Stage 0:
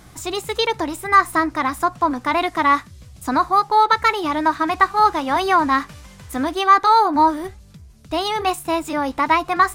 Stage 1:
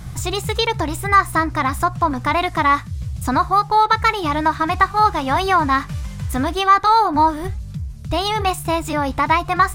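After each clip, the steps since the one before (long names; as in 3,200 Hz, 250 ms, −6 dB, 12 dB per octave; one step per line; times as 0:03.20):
low shelf with overshoot 200 Hz +10.5 dB, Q 1.5
in parallel at −0.5 dB: downward compressor, threshold −24 dBFS, peak gain reduction 15 dB
on the sum: level −1.5 dB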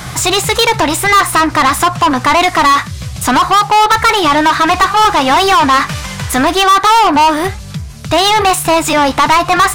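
mid-hump overdrive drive 26 dB, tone 7,200 Hz, clips at −2 dBFS
tape wow and flutter 21 cents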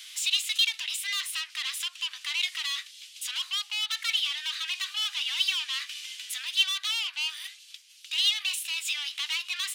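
four-pole ladder high-pass 2,600 Hz, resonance 55%
level −6.5 dB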